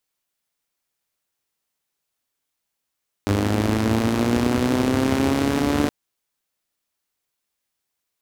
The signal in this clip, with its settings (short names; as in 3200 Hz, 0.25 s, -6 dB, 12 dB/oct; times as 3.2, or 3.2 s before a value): four-cylinder engine model, changing speed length 2.62 s, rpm 3000, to 4400, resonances 94/240 Hz